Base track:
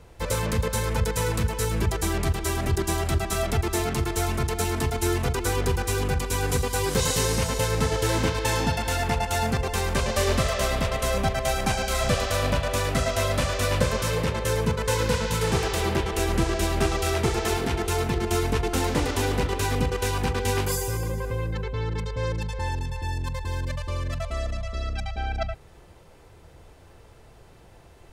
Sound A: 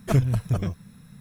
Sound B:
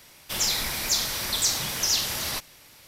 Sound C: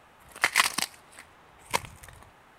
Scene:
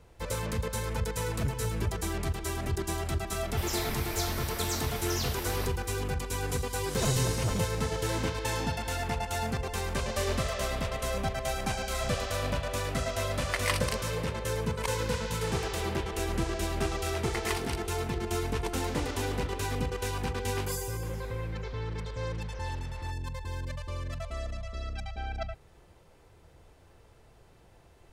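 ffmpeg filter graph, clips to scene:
-filter_complex "[1:a]asplit=2[a][b];[2:a]asplit=2[c][d];[3:a]asplit=2[e][f];[0:a]volume=-7dB[g];[c]equalizer=f=6.1k:t=o:w=2.7:g=-9.5[h];[b]asoftclip=type=tanh:threshold=-25.5dB[i];[d]lowpass=1.8k[j];[a]atrim=end=1.2,asetpts=PTS-STARTPTS,volume=-15.5dB,afade=t=in:d=0.004:c=hsin,afade=t=out:st=1.196:d=0.004:c=hsin,adelay=1310[k];[h]atrim=end=2.87,asetpts=PTS-STARTPTS,volume=-3.5dB,afade=t=in:d=0.004:c=hsin,afade=t=out:st=2.866:d=0.004:c=hsin,adelay=3270[l];[i]atrim=end=1.2,asetpts=PTS-STARTPTS,volume=-0.5dB,afade=t=in:d=0.004:c=hsin,afade=t=out:st=1.196:d=0.004:c=hsin,adelay=6930[m];[e]atrim=end=2.58,asetpts=PTS-STARTPTS,volume=-8.5dB,afade=t=in:d=0.004:c=hsin,afade=t=out:st=2.576:d=0.004:c=hsin,adelay=13100[n];[f]atrim=end=2.58,asetpts=PTS-STARTPTS,volume=-14dB,afade=t=in:d=0.004:c=hsin,afade=t=out:st=2.576:d=0.004:c=hsin,adelay=16910[o];[j]atrim=end=2.87,asetpts=PTS-STARTPTS,volume=-16dB,afade=t=in:d=0.004:c=hsin,afade=t=out:st=2.866:d=0.004:c=hsin,adelay=20720[p];[g][k][l][m][n][o][p]amix=inputs=7:normalize=0"

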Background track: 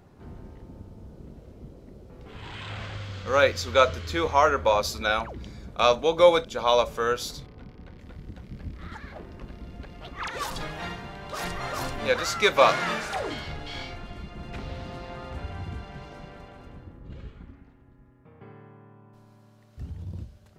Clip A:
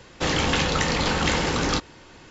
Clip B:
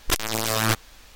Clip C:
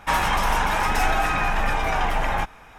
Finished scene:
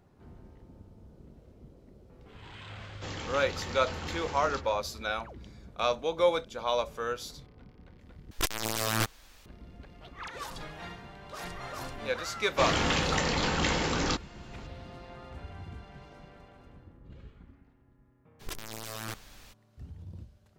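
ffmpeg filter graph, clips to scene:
-filter_complex "[1:a]asplit=2[a][b];[2:a]asplit=2[c][d];[0:a]volume=-8dB[e];[a]asplit=2[f][g];[g]adelay=140,highpass=300,lowpass=3.4k,asoftclip=type=hard:threshold=-17.5dB,volume=-9dB[h];[f][h]amix=inputs=2:normalize=0[i];[d]acompressor=threshold=-27dB:ratio=12:attack=0.16:release=34:knee=1:detection=peak[j];[e]asplit=2[k][l];[k]atrim=end=8.314[m];[c]atrim=end=1.15,asetpts=PTS-STARTPTS,volume=-6.5dB[n];[l]atrim=start=9.456[o];[i]atrim=end=2.3,asetpts=PTS-STARTPTS,volume=-17dB,afade=t=in:d=0.004:c=hsin,afade=t=out:st=2.296:d=0.004:c=hsin,adelay=2810[p];[b]atrim=end=2.3,asetpts=PTS-STARTPTS,volume=-5.5dB,afade=t=in:d=0.004:c=hsin,afade=t=out:st=2.296:d=0.004:c=hsin,adelay=12370[q];[j]atrim=end=1.15,asetpts=PTS-STARTPTS,volume=-3.5dB,afade=t=in:d=0.02,afade=t=out:st=1.13:d=0.02,adelay=18390[r];[m][n]acrossfade=d=0.004:c1=hsin:c2=hsin[s];[s][o]acrossfade=d=0.004:c1=hsin:c2=hsin[t];[t][p][q][r]amix=inputs=4:normalize=0"

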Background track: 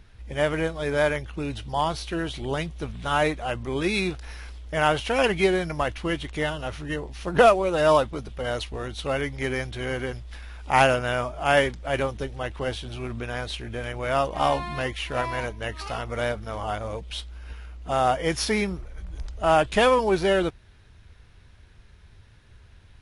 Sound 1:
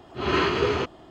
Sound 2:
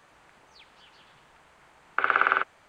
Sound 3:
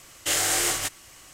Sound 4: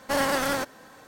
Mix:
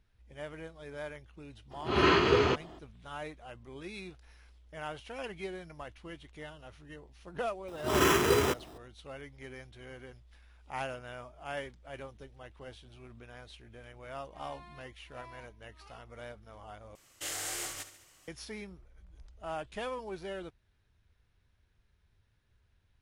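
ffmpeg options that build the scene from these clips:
-filter_complex "[1:a]asplit=2[a][b];[0:a]volume=-19dB[c];[b]acrusher=samples=10:mix=1:aa=0.000001[d];[3:a]aecho=1:1:71|142|213|284|355|426:0.237|0.135|0.077|0.0439|0.025|0.0143[e];[c]asplit=2[f][g];[f]atrim=end=16.954[h];[e]atrim=end=1.33,asetpts=PTS-STARTPTS,volume=-14dB[i];[g]atrim=start=18.276[j];[a]atrim=end=1.1,asetpts=PTS-STARTPTS,volume=-1.5dB,afade=t=in:d=0.02,afade=t=out:st=1.08:d=0.02,adelay=1700[k];[d]atrim=end=1.1,asetpts=PTS-STARTPTS,volume=-2.5dB,afade=t=in:d=0.004:c=hsin,afade=t=out:st=1.096:d=0.004:c=hsin,adelay=7680[l];[h][i]acrossfade=d=0.004:c1=hsin:c2=hsin[m];[m][j]acrossfade=d=0.004:c1=hsin:c2=hsin[n];[n][k][l]amix=inputs=3:normalize=0"

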